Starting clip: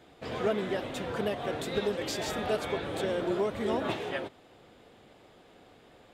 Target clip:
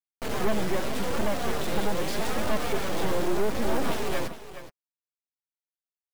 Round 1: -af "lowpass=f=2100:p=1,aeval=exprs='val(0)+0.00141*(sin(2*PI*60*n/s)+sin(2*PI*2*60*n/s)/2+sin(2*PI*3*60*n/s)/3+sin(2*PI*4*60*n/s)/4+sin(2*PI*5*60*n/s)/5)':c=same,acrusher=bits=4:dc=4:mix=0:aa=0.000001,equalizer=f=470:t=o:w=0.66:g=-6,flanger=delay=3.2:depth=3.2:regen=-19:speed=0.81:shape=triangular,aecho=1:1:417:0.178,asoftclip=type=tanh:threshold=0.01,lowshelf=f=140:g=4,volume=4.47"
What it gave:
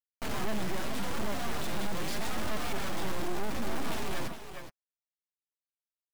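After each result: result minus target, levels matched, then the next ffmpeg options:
saturation: distortion +6 dB; 500 Hz band -3.5 dB
-af "lowpass=f=2100:p=1,aeval=exprs='val(0)+0.00141*(sin(2*PI*60*n/s)+sin(2*PI*2*60*n/s)/2+sin(2*PI*3*60*n/s)/3+sin(2*PI*4*60*n/s)/4+sin(2*PI*5*60*n/s)/5)':c=same,acrusher=bits=4:dc=4:mix=0:aa=0.000001,equalizer=f=470:t=o:w=0.66:g=-6,flanger=delay=3.2:depth=3.2:regen=-19:speed=0.81:shape=triangular,aecho=1:1:417:0.178,asoftclip=type=tanh:threshold=0.0299,lowshelf=f=140:g=4,volume=4.47"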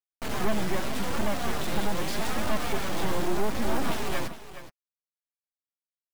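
500 Hz band -2.5 dB
-af "lowpass=f=2100:p=1,aeval=exprs='val(0)+0.00141*(sin(2*PI*60*n/s)+sin(2*PI*2*60*n/s)/2+sin(2*PI*3*60*n/s)/3+sin(2*PI*4*60*n/s)/4+sin(2*PI*5*60*n/s)/5)':c=same,acrusher=bits=4:dc=4:mix=0:aa=0.000001,flanger=delay=3.2:depth=3.2:regen=-19:speed=0.81:shape=triangular,aecho=1:1:417:0.178,asoftclip=type=tanh:threshold=0.0299,lowshelf=f=140:g=4,volume=4.47"

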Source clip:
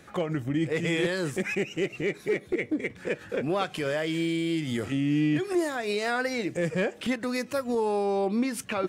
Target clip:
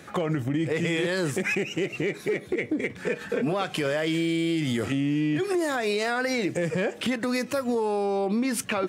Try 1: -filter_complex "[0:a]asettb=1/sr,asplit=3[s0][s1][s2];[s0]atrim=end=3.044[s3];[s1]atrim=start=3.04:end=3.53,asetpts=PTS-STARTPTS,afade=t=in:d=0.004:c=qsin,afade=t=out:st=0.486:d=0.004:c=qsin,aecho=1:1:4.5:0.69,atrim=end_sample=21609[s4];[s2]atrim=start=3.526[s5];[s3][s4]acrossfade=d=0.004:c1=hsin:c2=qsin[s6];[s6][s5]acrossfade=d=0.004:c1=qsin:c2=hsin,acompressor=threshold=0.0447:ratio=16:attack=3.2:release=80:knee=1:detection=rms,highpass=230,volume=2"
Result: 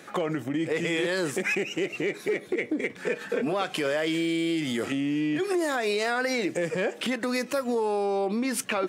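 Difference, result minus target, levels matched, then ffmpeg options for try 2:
125 Hz band -6.5 dB
-filter_complex "[0:a]asettb=1/sr,asplit=3[s0][s1][s2];[s0]atrim=end=3.044[s3];[s1]atrim=start=3.04:end=3.53,asetpts=PTS-STARTPTS,afade=t=in:d=0.004:c=qsin,afade=t=out:st=0.486:d=0.004:c=qsin,aecho=1:1:4.5:0.69,atrim=end_sample=21609[s4];[s2]atrim=start=3.526[s5];[s3][s4]acrossfade=d=0.004:c1=hsin:c2=qsin[s6];[s6][s5]acrossfade=d=0.004:c1=qsin:c2=hsin,acompressor=threshold=0.0447:ratio=16:attack=3.2:release=80:knee=1:detection=rms,highpass=84,volume=2"

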